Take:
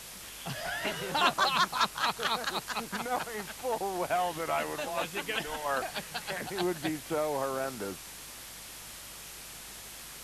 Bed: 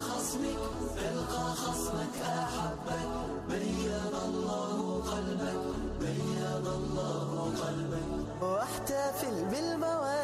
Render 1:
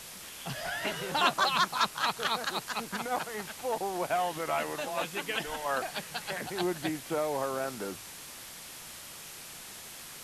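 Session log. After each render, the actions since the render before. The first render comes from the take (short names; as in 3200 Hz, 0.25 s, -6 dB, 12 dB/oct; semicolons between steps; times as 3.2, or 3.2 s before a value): de-hum 50 Hz, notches 2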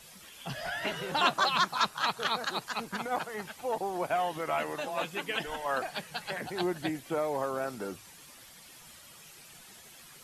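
denoiser 10 dB, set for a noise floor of -46 dBFS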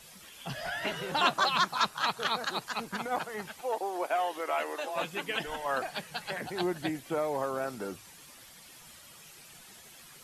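3.61–4.96 HPF 310 Hz 24 dB/oct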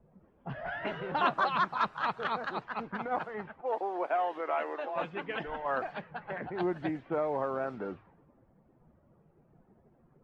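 LPF 1800 Hz 12 dB/oct; low-pass opened by the level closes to 400 Hz, open at -29.5 dBFS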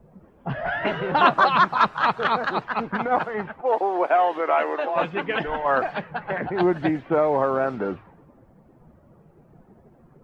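gain +11 dB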